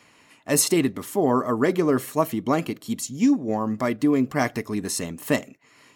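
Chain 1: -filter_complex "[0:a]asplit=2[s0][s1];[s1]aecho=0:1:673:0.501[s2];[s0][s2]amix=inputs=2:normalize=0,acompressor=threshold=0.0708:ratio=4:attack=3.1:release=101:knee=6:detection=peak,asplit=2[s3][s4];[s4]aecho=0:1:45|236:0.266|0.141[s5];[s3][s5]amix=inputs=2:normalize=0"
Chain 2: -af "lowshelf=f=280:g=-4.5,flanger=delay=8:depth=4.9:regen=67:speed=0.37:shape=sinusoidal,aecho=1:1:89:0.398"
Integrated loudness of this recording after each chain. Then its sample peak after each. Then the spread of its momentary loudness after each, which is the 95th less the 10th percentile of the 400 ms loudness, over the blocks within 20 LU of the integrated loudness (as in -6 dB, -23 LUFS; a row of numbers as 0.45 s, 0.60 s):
-27.5 LUFS, -28.5 LUFS; -14.0 dBFS, -11.0 dBFS; 4 LU, 8 LU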